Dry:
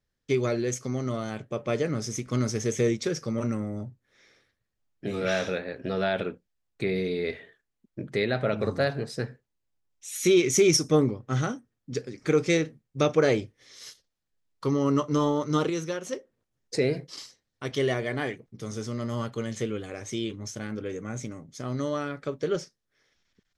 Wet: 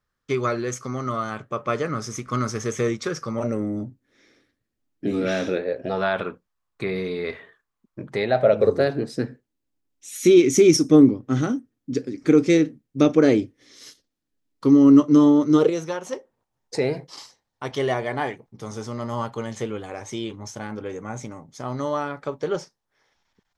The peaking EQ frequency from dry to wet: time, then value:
peaking EQ +14 dB 0.75 oct
3.28 s 1.2 kHz
3.68 s 280 Hz
5.46 s 280 Hz
6.06 s 1.1 kHz
8.00 s 1.1 kHz
9.06 s 280 Hz
15.48 s 280 Hz
15.88 s 880 Hz

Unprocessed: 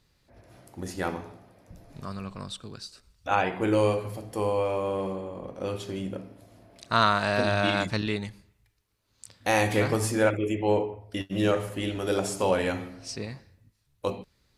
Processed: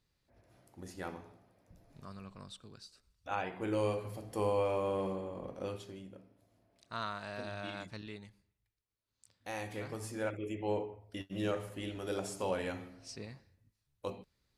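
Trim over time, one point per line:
3.50 s -12 dB
4.45 s -5 dB
5.54 s -5 dB
6.08 s -17.5 dB
9.82 s -17.5 dB
10.63 s -10.5 dB

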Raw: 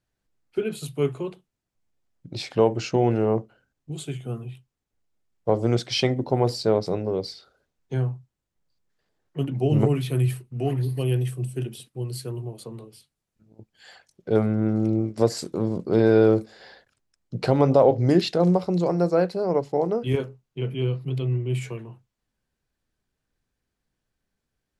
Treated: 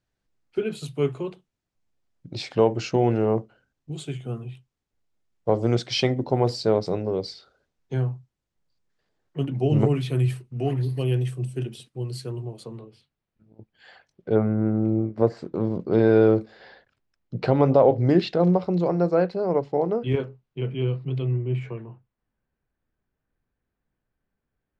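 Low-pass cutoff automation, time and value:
7.4 kHz
from 12.78 s 3.2 kHz
from 14.35 s 1.7 kHz
from 15.54 s 3.5 kHz
from 21.31 s 2 kHz

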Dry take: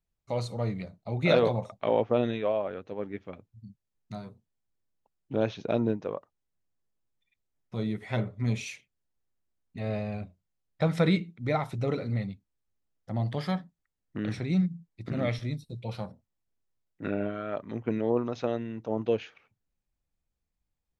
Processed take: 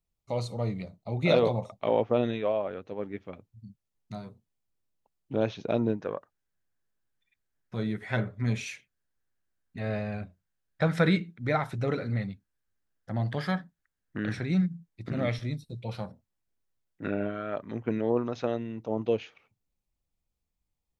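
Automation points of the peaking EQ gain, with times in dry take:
peaking EQ 1.6 kHz 0.39 oct
-8 dB
from 1.86 s -1 dB
from 5.99 s +10.5 dB
from 14.75 s +2.5 dB
from 18.54 s -6.5 dB

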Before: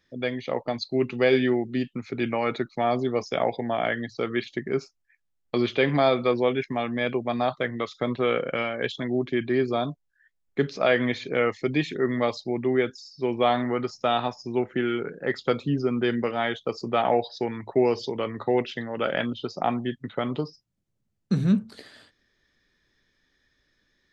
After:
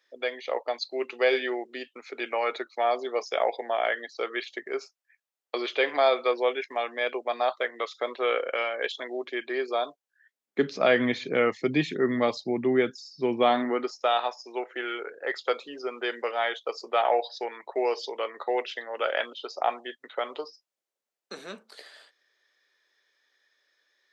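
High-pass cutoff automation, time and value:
high-pass 24 dB/octave
9.89 s 440 Hz
10.90 s 140 Hz
13.36 s 140 Hz
14.13 s 470 Hz

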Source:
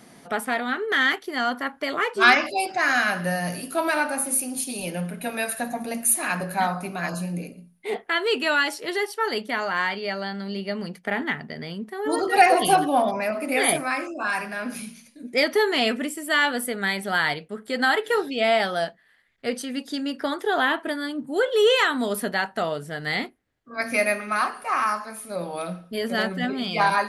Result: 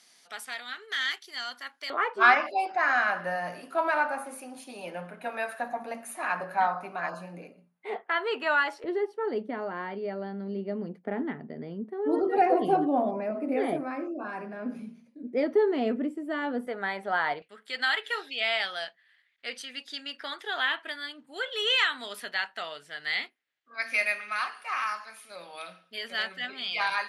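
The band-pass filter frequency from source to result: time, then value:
band-pass filter, Q 1.1
5.1 kHz
from 1.90 s 1 kHz
from 8.84 s 330 Hz
from 16.67 s 800 Hz
from 17.42 s 2.9 kHz

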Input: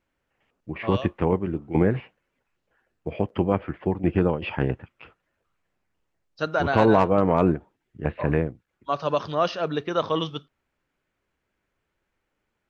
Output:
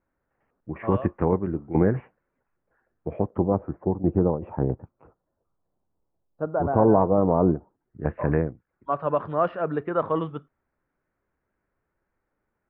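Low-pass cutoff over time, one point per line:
low-pass 24 dB/octave
3.10 s 1.7 kHz
3.51 s 1 kHz
7.43 s 1 kHz
8.19 s 1.8 kHz

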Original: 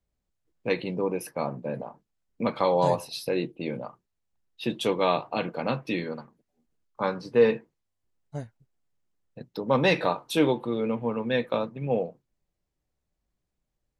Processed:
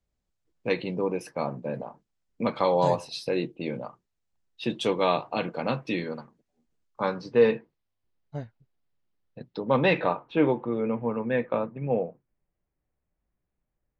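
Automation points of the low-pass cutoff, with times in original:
low-pass 24 dB/octave
7.04 s 8.5 kHz
7.50 s 4.9 kHz
9.49 s 4.9 kHz
10.37 s 2.4 kHz

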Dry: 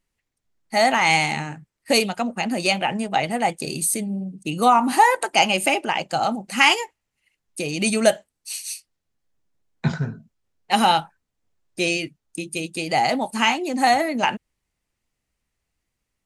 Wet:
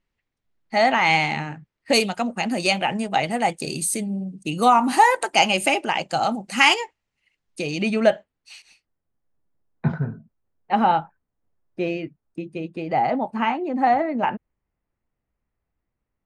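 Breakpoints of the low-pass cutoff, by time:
3.9 kHz
from 1.93 s 9.8 kHz
from 6.74 s 5.6 kHz
from 7.82 s 2.6 kHz
from 8.62 s 1.4 kHz

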